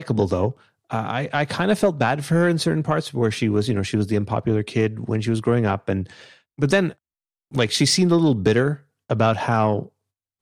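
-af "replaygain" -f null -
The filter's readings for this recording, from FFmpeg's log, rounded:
track_gain = +1.6 dB
track_peak = 0.300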